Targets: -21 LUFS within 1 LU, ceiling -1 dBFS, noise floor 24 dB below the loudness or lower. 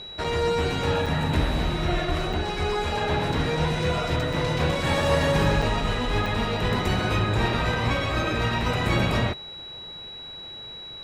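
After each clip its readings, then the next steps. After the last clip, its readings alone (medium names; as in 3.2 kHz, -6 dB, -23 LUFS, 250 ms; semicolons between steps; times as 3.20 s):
dropouts 6; longest dropout 4.2 ms; steady tone 3.9 kHz; tone level -37 dBFS; loudness -24.5 LUFS; peak level -10.0 dBFS; loudness target -21.0 LUFS
-> interpolate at 0.24/1.06/2.33/4.33/5.62/6.26 s, 4.2 ms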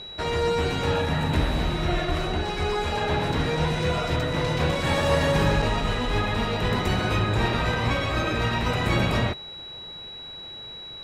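dropouts 0; steady tone 3.9 kHz; tone level -37 dBFS
-> band-stop 3.9 kHz, Q 30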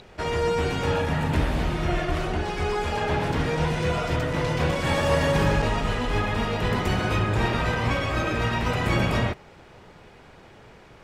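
steady tone not found; loudness -25.0 LUFS; peak level -10.0 dBFS; loudness target -21.0 LUFS
-> trim +4 dB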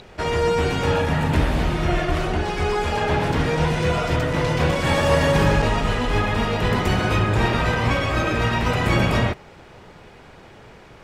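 loudness -21.0 LUFS; peak level -6.5 dBFS; noise floor -45 dBFS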